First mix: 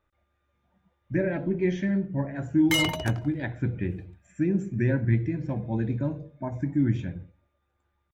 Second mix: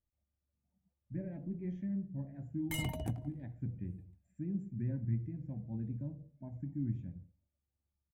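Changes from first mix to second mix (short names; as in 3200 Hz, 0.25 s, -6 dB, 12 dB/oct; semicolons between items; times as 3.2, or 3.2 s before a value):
speech -11.0 dB; master: add EQ curve 240 Hz 0 dB, 370 Hz -11 dB, 730 Hz -9 dB, 1300 Hz -22 dB, 2000 Hz -16 dB, 3700 Hz -20 dB, 5900 Hz -20 dB, 8500 Hz -8 dB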